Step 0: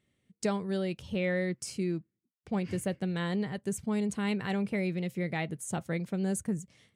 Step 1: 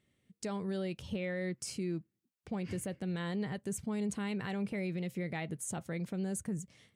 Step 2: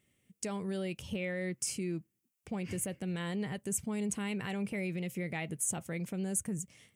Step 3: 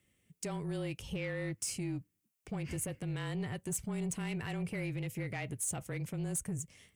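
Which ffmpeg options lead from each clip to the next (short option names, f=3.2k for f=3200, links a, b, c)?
-af "alimiter=level_in=4dB:limit=-24dB:level=0:latency=1:release=94,volume=-4dB"
-af "aexciter=amount=1.8:drive=1.9:freq=2.2k"
-af "afreqshift=-26,asoftclip=type=tanh:threshold=-29dB"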